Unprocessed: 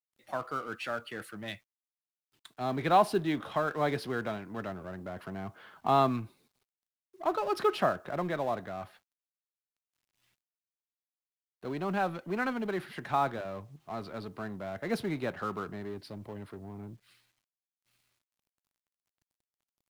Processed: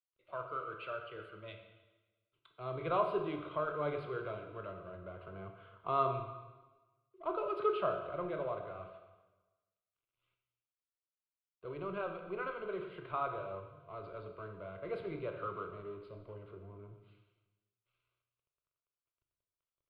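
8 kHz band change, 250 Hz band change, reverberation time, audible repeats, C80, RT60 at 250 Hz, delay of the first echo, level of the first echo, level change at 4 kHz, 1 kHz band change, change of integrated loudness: below −25 dB, −11.0 dB, 1.2 s, no echo audible, 8.5 dB, 1.2 s, no echo audible, no echo audible, −12.0 dB, −7.5 dB, −6.5 dB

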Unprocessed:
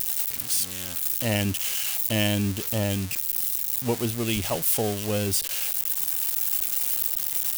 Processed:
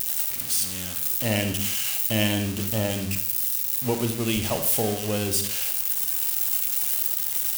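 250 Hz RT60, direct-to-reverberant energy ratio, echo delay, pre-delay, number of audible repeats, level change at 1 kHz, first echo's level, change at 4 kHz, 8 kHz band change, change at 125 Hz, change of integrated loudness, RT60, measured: 0.65 s, 5.5 dB, no echo audible, 29 ms, no echo audible, +1.0 dB, no echo audible, +1.0 dB, +1.0 dB, 0.0 dB, +1.0 dB, 0.65 s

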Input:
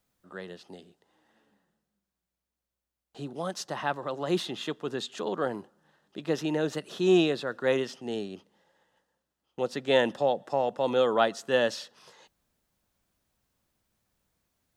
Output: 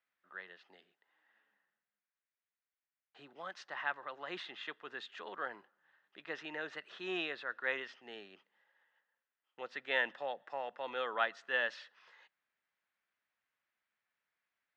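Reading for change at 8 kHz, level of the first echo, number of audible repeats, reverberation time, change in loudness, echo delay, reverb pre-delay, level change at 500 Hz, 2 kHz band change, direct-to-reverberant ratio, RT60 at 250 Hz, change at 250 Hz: below −20 dB, no echo audible, no echo audible, no reverb audible, −11.0 dB, no echo audible, no reverb audible, −16.5 dB, −1.5 dB, no reverb audible, no reverb audible, −20.5 dB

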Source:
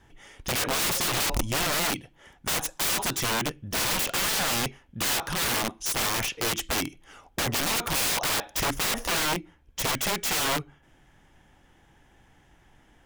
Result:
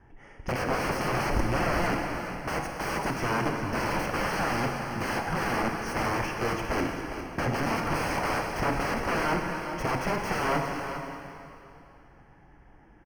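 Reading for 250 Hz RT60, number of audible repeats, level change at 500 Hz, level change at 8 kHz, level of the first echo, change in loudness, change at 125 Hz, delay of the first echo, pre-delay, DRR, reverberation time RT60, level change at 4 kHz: 2.7 s, 1, +3.5 dB, −15.0 dB, −10.5 dB, −3.0 dB, +3.5 dB, 402 ms, 26 ms, 1.5 dB, 2.9 s, −12.0 dB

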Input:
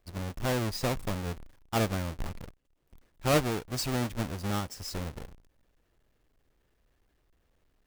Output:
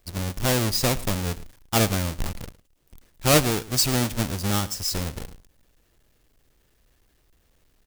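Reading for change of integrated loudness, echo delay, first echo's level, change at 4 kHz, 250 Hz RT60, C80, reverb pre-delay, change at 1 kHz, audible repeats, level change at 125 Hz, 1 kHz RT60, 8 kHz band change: +8.5 dB, 109 ms, −19.0 dB, +11.5 dB, no reverb audible, no reverb audible, no reverb audible, +5.5 dB, 1, +7.0 dB, no reverb audible, +13.5 dB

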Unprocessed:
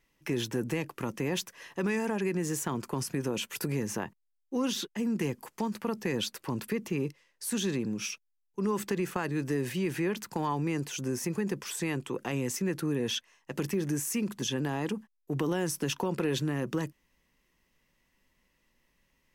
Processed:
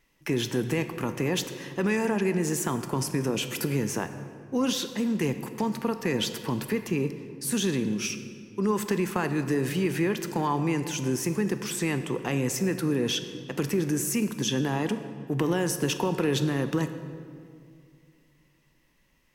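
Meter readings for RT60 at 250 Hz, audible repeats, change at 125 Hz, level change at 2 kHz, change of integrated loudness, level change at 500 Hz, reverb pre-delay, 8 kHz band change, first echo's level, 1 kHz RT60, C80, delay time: 2.8 s, no echo audible, +4.5 dB, +4.5 dB, +4.5 dB, +4.5 dB, 17 ms, +4.5 dB, no echo audible, 2.1 s, 11.0 dB, no echo audible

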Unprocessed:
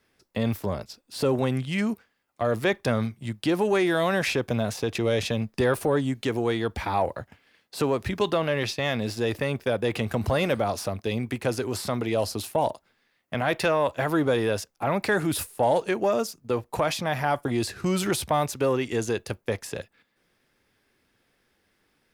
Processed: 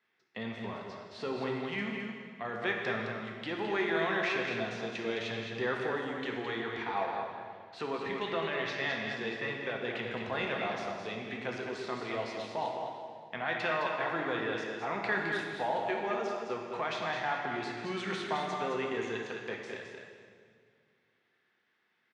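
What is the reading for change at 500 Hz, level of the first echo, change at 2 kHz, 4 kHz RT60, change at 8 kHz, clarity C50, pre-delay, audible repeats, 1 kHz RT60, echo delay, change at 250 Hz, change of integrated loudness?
−9.5 dB, −6.0 dB, −2.5 dB, 1.7 s, −19.0 dB, 0.5 dB, 5 ms, 1, 1.8 s, 213 ms, −11.0 dB, −8.5 dB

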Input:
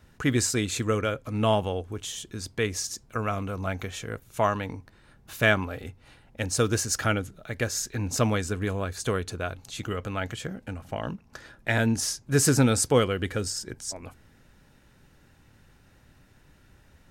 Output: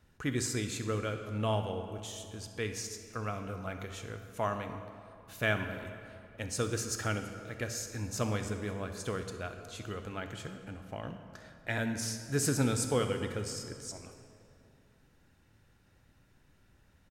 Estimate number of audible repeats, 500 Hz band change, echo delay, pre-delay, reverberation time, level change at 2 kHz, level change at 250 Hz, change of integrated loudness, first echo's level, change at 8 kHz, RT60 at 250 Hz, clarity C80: 1, −8.0 dB, 64 ms, 18 ms, 2.5 s, −8.0 dB, −8.0 dB, −8.0 dB, −17.0 dB, −8.5 dB, 2.9 s, 8.5 dB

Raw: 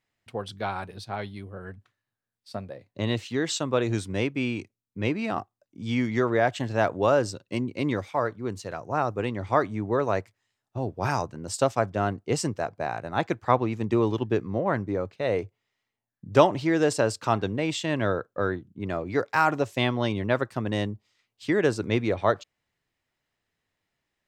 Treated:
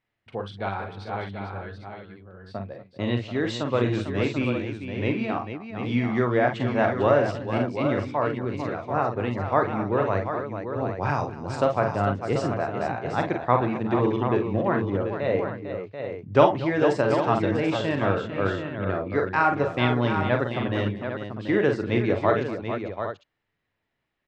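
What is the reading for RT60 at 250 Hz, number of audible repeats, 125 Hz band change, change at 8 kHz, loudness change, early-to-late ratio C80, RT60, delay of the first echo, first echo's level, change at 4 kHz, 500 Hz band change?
no reverb audible, 5, +3.0 dB, below −10 dB, +1.5 dB, no reverb audible, no reverb audible, 41 ms, −7.0 dB, −2.0 dB, +2.0 dB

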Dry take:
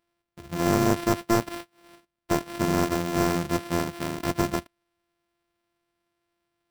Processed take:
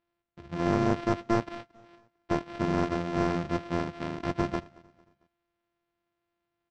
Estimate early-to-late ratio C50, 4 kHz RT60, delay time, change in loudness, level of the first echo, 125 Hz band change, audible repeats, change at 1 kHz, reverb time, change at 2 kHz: no reverb audible, no reverb audible, 225 ms, −4.0 dB, −23.5 dB, −3.0 dB, 2, −3.5 dB, no reverb audible, −4.5 dB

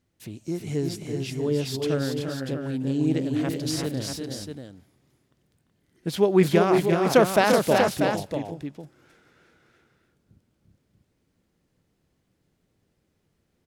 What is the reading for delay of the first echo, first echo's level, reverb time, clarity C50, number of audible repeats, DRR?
344 ms, −6.5 dB, no reverb audible, no reverb audible, 3, no reverb audible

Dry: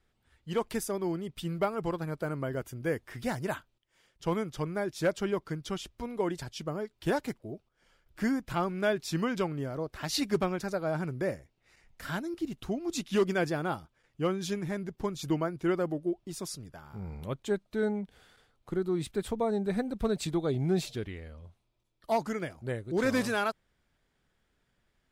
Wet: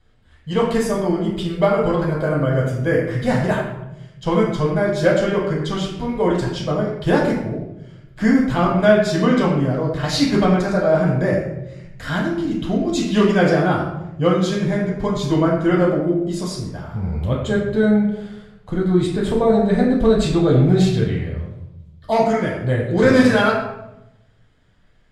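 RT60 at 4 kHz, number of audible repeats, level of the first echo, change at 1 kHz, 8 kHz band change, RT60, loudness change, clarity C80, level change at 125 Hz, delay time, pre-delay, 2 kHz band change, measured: 0.55 s, no echo audible, no echo audible, +12.5 dB, +7.0 dB, 0.90 s, +14.0 dB, 5.0 dB, +16.5 dB, no echo audible, 8 ms, +13.0 dB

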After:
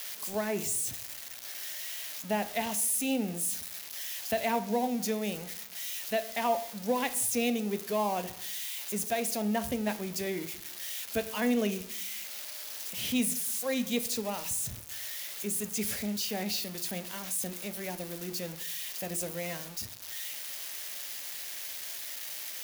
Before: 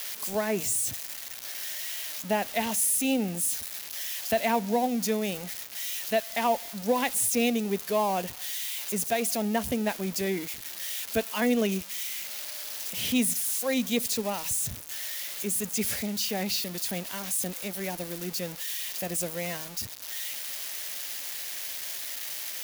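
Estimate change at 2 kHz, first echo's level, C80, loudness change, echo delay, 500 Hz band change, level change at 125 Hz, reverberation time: −3.5 dB, no echo audible, 18.0 dB, −3.5 dB, no echo audible, −3.5 dB, −3.5 dB, 0.65 s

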